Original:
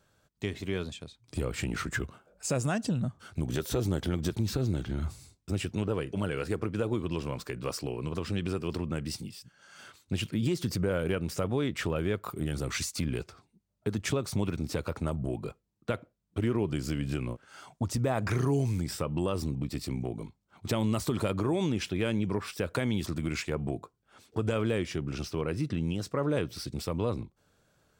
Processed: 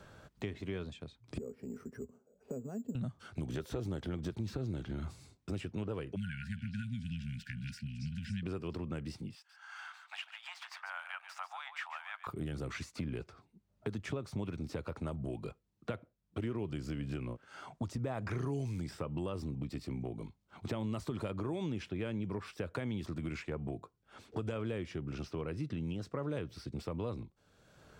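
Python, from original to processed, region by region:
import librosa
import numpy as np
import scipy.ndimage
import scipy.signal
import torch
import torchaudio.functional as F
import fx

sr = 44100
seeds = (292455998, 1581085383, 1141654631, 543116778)

y = fx.chain(x, sr, fx.double_bandpass(hz=320.0, octaves=0.73),
    fx.resample_bad(factor=6, down='filtered', up='hold'), at=(1.38, 2.95))
y = fx.chain(y, sr, fx.brickwall_bandstop(low_hz=250.0, high_hz=1400.0),
    fx.echo_stepped(ms=276, hz=4400.0, octaves=0.7, feedback_pct=70, wet_db=-4.5), at=(6.16, 8.43))
y = fx.chain(y, sr, fx.median_filter(points=3),
    fx.steep_highpass(hz=750.0, slope=72),
    fx.echo_single(ms=141, db=-11.0), at=(9.35, 12.27))
y = fx.lowpass(y, sr, hz=3000.0, slope=6)
y = fx.band_squash(y, sr, depth_pct=70)
y = F.gain(torch.from_numpy(y), -7.5).numpy()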